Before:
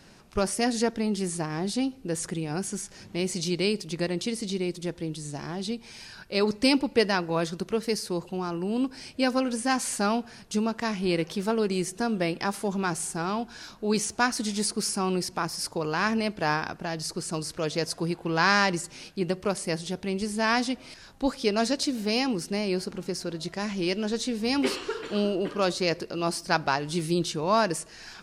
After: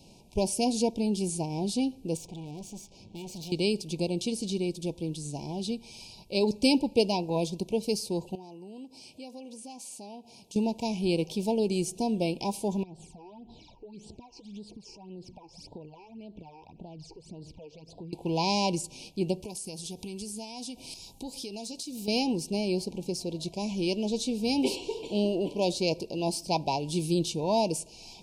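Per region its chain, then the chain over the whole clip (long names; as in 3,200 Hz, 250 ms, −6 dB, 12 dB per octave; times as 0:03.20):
0:02.17–0:03.52: low-pass filter 5,200 Hz + tube saturation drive 37 dB, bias 0.6
0:08.35–0:10.56: downward compressor 2.5 to 1, threshold −45 dBFS + high-pass filter 240 Hz 6 dB per octave
0:12.83–0:18.13: low-pass filter 2,800 Hz + downward compressor 8 to 1, threshold −39 dBFS + all-pass phaser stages 12, 1.8 Hz, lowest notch 190–2,200 Hz
0:19.43–0:22.08: high-shelf EQ 4,900 Hz +12 dB + notch filter 590 Hz, Q 6.6 + downward compressor 8 to 1, threshold −34 dBFS
whole clip: Chebyshev band-stop filter 980–2,300 Hz, order 5; parametric band 1,700 Hz −7 dB 1.1 octaves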